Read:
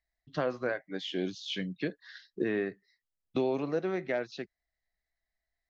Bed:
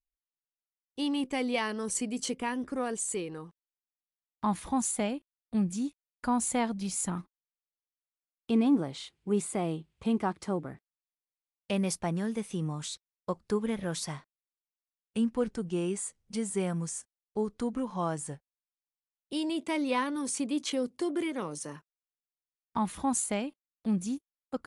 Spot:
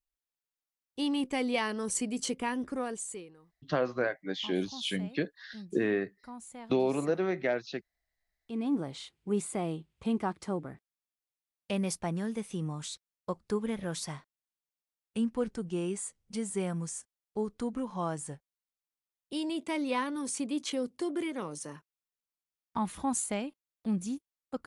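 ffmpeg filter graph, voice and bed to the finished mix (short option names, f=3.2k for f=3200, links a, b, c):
-filter_complex "[0:a]adelay=3350,volume=2dB[a];[1:a]volume=15.5dB,afade=t=out:st=2.65:d=0.71:silence=0.133352,afade=t=in:st=8.43:d=0.46:silence=0.16788[b];[a][b]amix=inputs=2:normalize=0"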